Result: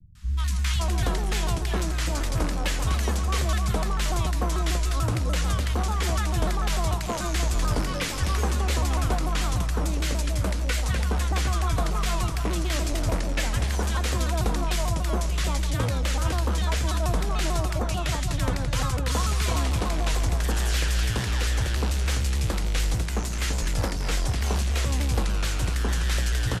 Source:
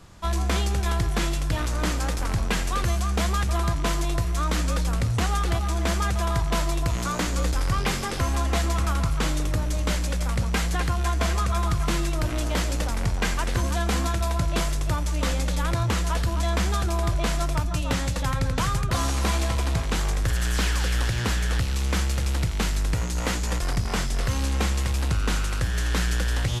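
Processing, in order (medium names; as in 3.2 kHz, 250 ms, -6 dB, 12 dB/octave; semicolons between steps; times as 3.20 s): three bands offset in time lows, highs, mids 150/570 ms, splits 170/1300 Hz; vibrato with a chosen wave saw down 6.8 Hz, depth 160 cents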